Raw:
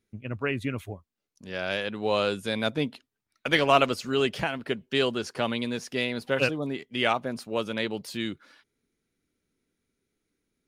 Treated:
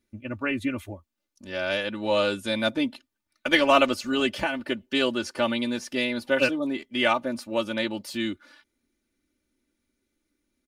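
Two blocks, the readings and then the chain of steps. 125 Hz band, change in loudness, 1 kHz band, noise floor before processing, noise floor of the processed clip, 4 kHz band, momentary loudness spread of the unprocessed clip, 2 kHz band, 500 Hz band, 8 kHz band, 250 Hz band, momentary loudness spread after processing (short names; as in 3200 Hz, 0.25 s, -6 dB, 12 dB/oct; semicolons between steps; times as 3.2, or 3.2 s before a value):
-5.5 dB, +2.0 dB, +1.0 dB, -84 dBFS, -82 dBFS, +2.0 dB, 10 LU, +2.5 dB, +1.5 dB, +2.0 dB, +4.0 dB, 10 LU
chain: comb 3.4 ms, depth 82%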